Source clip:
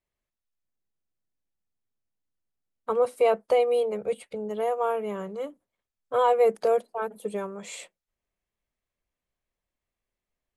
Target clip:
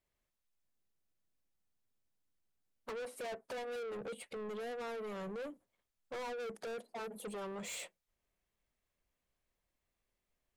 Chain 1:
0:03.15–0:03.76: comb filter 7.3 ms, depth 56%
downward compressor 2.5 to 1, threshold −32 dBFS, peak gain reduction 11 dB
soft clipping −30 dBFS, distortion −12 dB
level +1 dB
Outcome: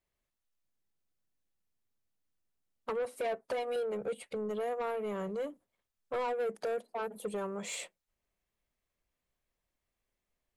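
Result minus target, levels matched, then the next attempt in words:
soft clipping: distortion −7 dB
0:03.15–0:03.76: comb filter 7.3 ms, depth 56%
downward compressor 2.5 to 1, threshold −32 dBFS, peak gain reduction 11 dB
soft clipping −41 dBFS, distortion −5 dB
level +1 dB

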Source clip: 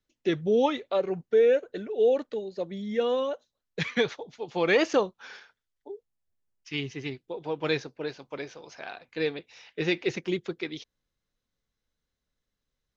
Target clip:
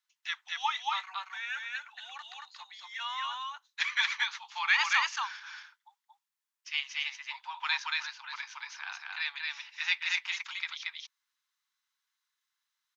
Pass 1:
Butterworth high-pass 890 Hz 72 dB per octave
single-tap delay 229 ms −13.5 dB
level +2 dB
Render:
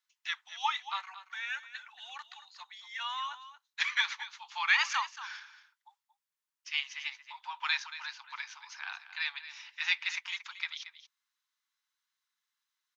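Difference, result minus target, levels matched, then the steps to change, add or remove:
echo-to-direct −11.5 dB
change: single-tap delay 229 ms −2 dB

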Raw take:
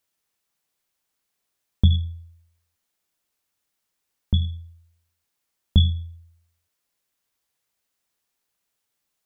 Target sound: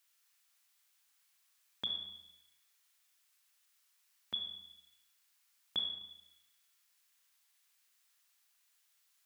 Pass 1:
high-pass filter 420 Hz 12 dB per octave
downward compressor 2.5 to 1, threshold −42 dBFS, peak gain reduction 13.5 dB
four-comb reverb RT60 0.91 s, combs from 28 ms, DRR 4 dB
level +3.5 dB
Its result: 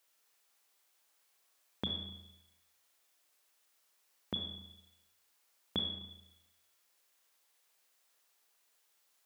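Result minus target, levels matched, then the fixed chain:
500 Hz band +11.5 dB
high-pass filter 1,300 Hz 12 dB per octave
downward compressor 2.5 to 1, threshold −42 dBFS, peak gain reduction 13 dB
four-comb reverb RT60 0.91 s, combs from 28 ms, DRR 4 dB
level +3.5 dB

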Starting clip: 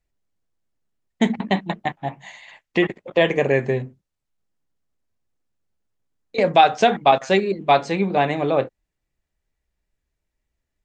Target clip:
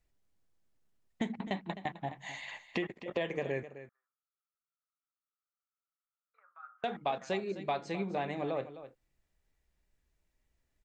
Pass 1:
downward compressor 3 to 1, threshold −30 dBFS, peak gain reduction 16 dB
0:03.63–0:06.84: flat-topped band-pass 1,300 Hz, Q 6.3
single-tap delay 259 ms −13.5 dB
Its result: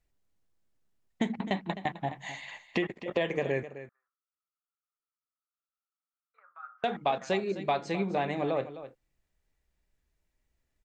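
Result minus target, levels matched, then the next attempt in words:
downward compressor: peak gain reduction −5 dB
downward compressor 3 to 1, threshold −37.5 dBFS, peak gain reduction 21 dB
0:03.63–0:06.84: flat-topped band-pass 1,300 Hz, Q 6.3
single-tap delay 259 ms −13.5 dB

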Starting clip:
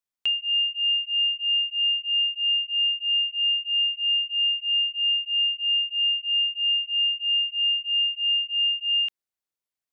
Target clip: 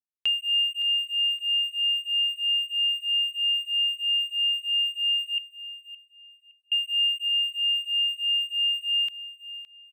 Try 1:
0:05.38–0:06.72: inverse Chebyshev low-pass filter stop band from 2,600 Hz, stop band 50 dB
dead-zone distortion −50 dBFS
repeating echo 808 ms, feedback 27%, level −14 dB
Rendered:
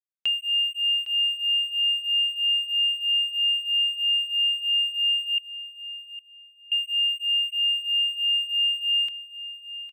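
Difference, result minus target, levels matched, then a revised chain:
echo 243 ms late
0:05.38–0:06.72: inverse Chebyshev low-pass filter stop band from 2,600 Hz, stop band 50 dB
dead-zone distortion −50 dBFS
repeating echo 565 ms, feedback 27%, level −14 dB

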